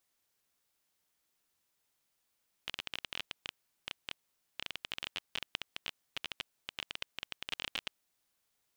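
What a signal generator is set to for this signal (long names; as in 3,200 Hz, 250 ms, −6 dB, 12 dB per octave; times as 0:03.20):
Geiger counter clicks 16 per second −19.5 dBFS 5.30 s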